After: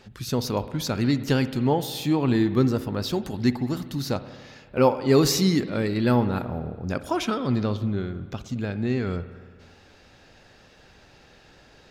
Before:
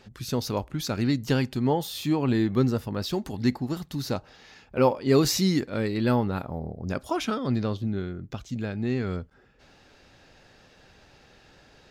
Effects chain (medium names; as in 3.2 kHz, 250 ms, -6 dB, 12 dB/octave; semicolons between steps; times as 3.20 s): spring tank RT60 1.7 s, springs 57 ms, chirp 45 ms, DRR 12.5 dB; trim +2 dB